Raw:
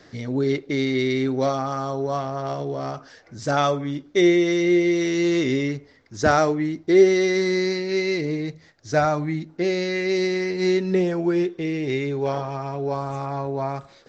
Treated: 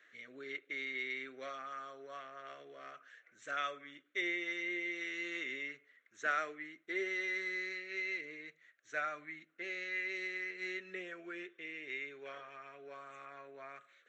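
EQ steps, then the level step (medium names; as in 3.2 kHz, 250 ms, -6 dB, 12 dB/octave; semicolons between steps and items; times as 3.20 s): high-pass 1.3 kHz 12 dB/octave; treble shelf 2.2 kHz -9 dB; static phaser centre 2.1 kHz, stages 4; -2.5 dB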